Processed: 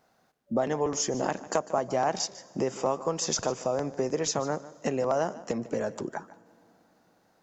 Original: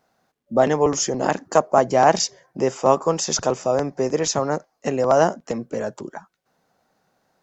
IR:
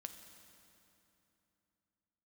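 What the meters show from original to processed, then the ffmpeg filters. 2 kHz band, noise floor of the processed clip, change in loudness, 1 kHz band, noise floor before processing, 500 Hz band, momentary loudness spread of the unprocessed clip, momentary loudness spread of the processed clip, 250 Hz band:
-9.0 dB, -68 dBFS, -9.0 dB, -10.5 dB, -73 dBFS, -9.0 dB, 11 LU, 6 LU, -7.0 dB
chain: -filter_complex "[0:a]acompressor=threshold=0.0447:ratio=3,asplit=2[s0][s1];[1:a]atrim=start_sample=2205,adelay=149[s2];[s1][s2]afir=irnorm=-1:irlink=0,volume=0.266[s3];[s0][s3]amix=inputs=2:normalize=0"

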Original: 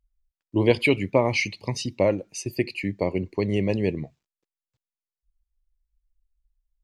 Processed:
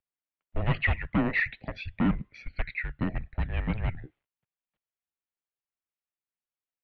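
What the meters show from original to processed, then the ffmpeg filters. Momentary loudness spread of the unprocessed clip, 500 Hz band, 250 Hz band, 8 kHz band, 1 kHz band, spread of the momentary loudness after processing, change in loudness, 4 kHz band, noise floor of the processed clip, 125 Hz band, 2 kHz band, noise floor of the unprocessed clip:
9 LU, -17.0 dB, -5.0 dB, under -35 dB, -5.0 dB, 12 LU, -5.5 dB, -11.0 dB, under -85 dBFS, -2.5 dB, -1.5 dB, under -85 dBFS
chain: -af "asoftclip=type=hard:threshold=0.106,highpass=f=210:w=0.5412,highpass=f=210:w=1.3066,highpass=f=280:t=q:w=0.5412,highpass=f=280:t=q:w=1.307,lowpass=f=3400:t=q:w=0.5176,lowpass=f=3400:t=q:w=0.7071,lowpass=f=3400:t=q:w=1.932,afreqshift=-340"

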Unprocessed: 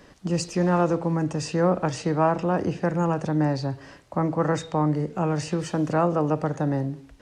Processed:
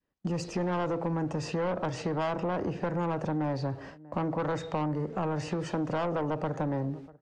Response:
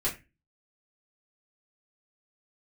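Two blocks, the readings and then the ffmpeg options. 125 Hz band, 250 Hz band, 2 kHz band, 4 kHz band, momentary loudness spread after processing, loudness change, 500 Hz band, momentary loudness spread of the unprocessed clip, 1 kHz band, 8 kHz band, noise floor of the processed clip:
-7.5 dB, -7.5 dB, -5.0 dB, -6.0 dB, 4 LU, -7.0 dB, -6.5 dB, 6 LU, -6.5 dB, -10.5 dB, -52 dBFS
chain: -filter_complex "[0:a]adynamicequalizer=threshold=0.0282:dfrequency=620:dqfactor=0.74:tfrequency=620:tqfactor=0.74:attack=5:release=100:ratio=0.375:range=2:mode=boostabove:tftype=bell,agate=range=0.0251:threshold=0.00794:ratio=16:detection=peak,aemphasis=mode=reproduction:type=50fm,asplit=2[s0][s1];[s1]adelay=641.4,volume=0.0316,highshelf=f=4000:g=-14.4[s2];[s0][s2]amix=inputs=2:normalize=0,asoftclip=type=tanh:threshold=0.112,acompressor=threshold=0.0398:ratio=6"

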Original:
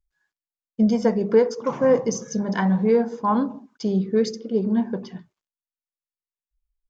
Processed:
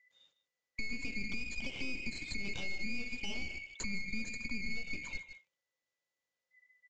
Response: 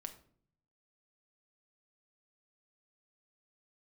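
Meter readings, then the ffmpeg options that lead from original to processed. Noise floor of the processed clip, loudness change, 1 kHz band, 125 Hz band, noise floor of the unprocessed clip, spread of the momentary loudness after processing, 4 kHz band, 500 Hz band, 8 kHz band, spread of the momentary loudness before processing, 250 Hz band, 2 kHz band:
under -85 dBFS, -17.5 dB, -31.0 dB, -21.0 dB, under -85 dBFS, 4 LU, -2.5 dB, -34.5 dB, no reading, 10 LU, -23.5 dB, 0.0 dB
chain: -filter_complex "[0:a]afftfilt=real='real(if(lt(b,920),b+92*(1-2*mod(floor(b/92),2)),b),0)':imag='imag(if(lt(b,920),b+92*(1-2*mod(floor(b/92),2)),b),0)':win_size=2048:overlap=0.75,highpass=75,equalizer=f=530:w=5.7:g=13.5,acompressor=threshold=0.0794:ratio=10,alimiter=level_in=1.19:limit=0.0631:level=0:latency=1:release=285,volume=0.841,aresample=16000,aeval=exprs='clip(val(0),-1,0.00794)':c=same,aresample=44100,aecho=1:1:156:0.168,acrossover=split=490[s0][s1];[s1]acompressor=threshold=0.00398:ratio=5[s2];[s0][s2]amix=inputs=2:normalize=0,volume=2.11"

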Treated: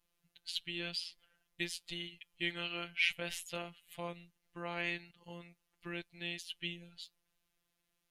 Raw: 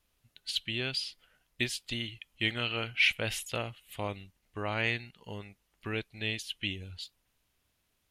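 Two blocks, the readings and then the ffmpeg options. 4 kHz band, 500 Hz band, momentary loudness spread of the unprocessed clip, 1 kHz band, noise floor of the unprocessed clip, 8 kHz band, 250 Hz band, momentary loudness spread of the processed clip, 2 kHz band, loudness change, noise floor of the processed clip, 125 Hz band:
-6.5 dB, -7.5 dB, 17 LU, -6.5 dB, -77 dBFS, -6.5 dB, -6.5 dB, 18 LU, -6.5 dB, -6.5 dB, -83 dBFS, -11.5 dB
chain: -af "afftfilt=real='hypot(re,im)*cos(PI*b)':imag='0':win_size=1024:overlap=0.75,volume=0.708"

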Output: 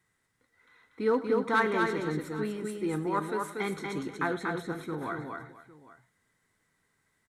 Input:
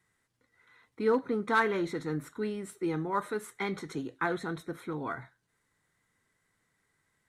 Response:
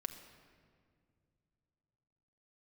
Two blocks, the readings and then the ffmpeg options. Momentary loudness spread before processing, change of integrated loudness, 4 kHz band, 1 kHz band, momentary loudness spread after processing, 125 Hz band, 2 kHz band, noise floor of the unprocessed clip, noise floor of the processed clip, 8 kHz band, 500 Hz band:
11 LU, +1.5 dB, +1.5 dB, +1.5 dB, 10 LU, +1.5 dB, +1.5 dB, -77 dBFS, -76 dBFS, +1.5 dB, +2.0 dB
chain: -af "aecho=1:1:104|238|336|484|806:0.126|0.631|0.112|0.133|0.112"

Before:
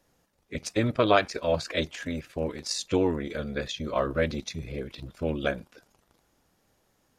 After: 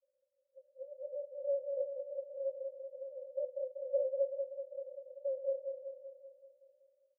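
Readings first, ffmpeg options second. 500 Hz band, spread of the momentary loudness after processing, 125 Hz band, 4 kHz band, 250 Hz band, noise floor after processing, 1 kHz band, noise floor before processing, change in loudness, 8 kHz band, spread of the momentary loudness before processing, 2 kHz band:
-7.0 dB, 14 LU, under -40 dB, under -40 dB, under -40 dB, -82 dBFS, under -40 dB, -70 dBFS, -10.5 dB, under -40 dB, 13 LU, under -40 dB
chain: -af "acompressor=threshold=0.0282:ratio=6,alimiter=level_in=2.24:limit=0.0631:level=0:latency=1:release=193,volume=0.447,dynaudnorm=f=210:g=11:m=3.98,flanger=delay=1.3:depth=3.6:regen=-66:speed=0.75:shape=triangular,afreqshift=-18,asuperpass=centerf=550:order=20:qfactor=6.6,aecho=1:1:191|382|573|764|955|1146|1337|1528:0.501|0.296|0.174|0.103|0.0607|0.0358|0.0211|0.0125,volume=1.78"

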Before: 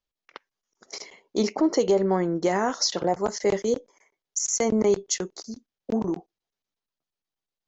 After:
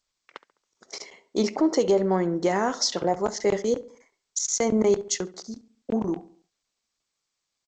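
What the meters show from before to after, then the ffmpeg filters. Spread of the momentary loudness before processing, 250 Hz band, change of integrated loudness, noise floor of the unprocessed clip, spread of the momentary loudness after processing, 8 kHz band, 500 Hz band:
17 LU, 0.0 dB, 0.0 dB, under -85 dBFS, 18 LU, no reading, 0.0 dB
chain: -filter_complex "[0:a]asplit=2[s0][s1];[s1]adelay=69,lowpass=f=2300:p=1,volume=0.141,asplit=2[s2][s3];[s3]adelay=69,lowpass=f=2300:p=1,volume=0.47,asplit=2[s4][s5];[s5]adelay=69,lowpass=f=2300:p=1,volume=0.47,asplit=2[s6][s7];[s7]adelay=69,lowpass=f=2300:p=1,volume=0.47[s8];[s2][s4][s6][s8]amix=inputs=4:normalize=0[s9];[s0][s9]amix=inputs=2:normalize=0" -ar 16000 -c:a g722

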